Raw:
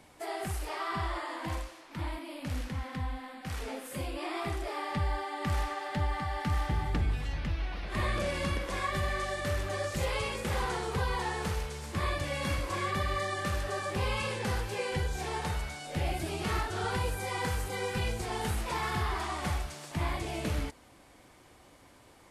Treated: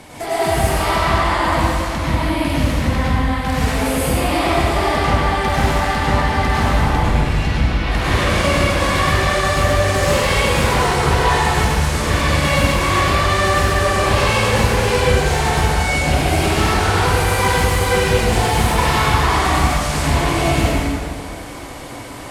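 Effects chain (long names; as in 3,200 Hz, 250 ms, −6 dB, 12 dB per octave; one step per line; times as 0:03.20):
in parallel at +1.5 dB: downward compressor, threshold −43 dBFS, peak gain reduction 16 dB
on the sum: sine wavefolder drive 8 dB, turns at −18.5 dBFS
dense smooth reverb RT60 1.9 s, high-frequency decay 0.75×, pre-delay 85 ms, DRR −8 dB
level −2 dB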